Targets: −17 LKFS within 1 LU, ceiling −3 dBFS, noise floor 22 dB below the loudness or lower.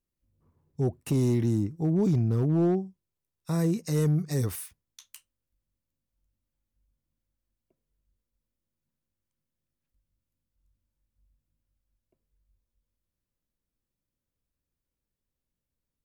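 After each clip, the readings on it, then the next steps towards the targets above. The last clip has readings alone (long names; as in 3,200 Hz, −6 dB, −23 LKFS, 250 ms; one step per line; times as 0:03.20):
share of clipped samples 0.4%; peaks flattened at −18.0 dBFS; integrated loudness −27.0 LKFS; sample peak −18.0 dBFS; target loudness −17.0 LKFS
→ clipped peaks rebuilt −18 dBFS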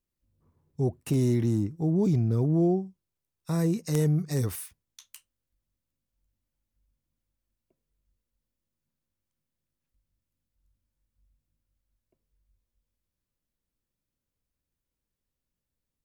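share of clipped samples 0.0%; integrated loudness −26.5 LKFS; sample peak −9.0 dBFS; target loudness −17.0 LKFS
→ level +9.5 dB
brickwall limiter −3 dBFS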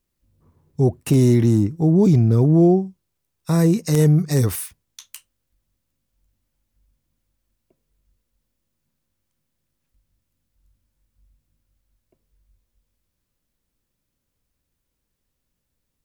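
integrated loudness −17.5 LKFS; sample peak −3.0 dBFS; background noise floor −77 dBFS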